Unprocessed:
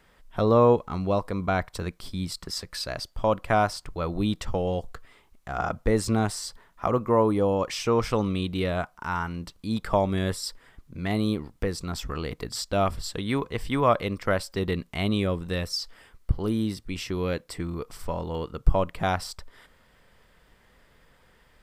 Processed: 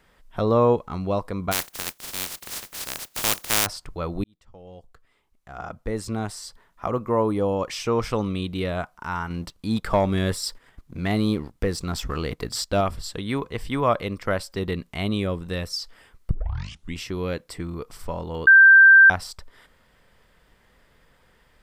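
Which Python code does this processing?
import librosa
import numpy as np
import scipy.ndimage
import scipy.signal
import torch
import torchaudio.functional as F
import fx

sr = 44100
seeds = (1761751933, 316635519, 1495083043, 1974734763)

y = fx.spec_flatten(x, sr, power=0.11, at=(1.51, 3.65), fade=0.02)
y = fx.leveller(y, sr, passes=1, at=(9.3, 12.81))
y = fx.edit(y, sr, fx.fade_in_span(start_s=4.24, length_s=3.2),
    fx.tape_start(start_s=16.31, length_s=0.67),
    fx.bleep(start_s=18.47, length_s=0.63, hz=1570.0, db=-7.5), tone=tone)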